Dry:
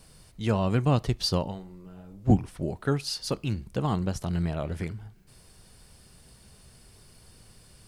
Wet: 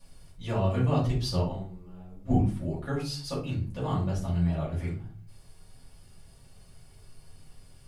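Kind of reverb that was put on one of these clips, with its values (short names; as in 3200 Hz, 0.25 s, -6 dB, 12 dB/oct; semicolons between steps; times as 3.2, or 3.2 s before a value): shoebox room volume 280 m³, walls furnished, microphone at 6.3 m; gain -14 dB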